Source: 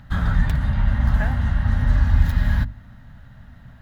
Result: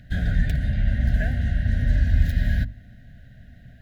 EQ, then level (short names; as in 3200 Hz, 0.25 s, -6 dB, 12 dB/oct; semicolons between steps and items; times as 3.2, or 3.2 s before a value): Chebyshev band-stop 730–1500 Hz, order 4; -1.5 dB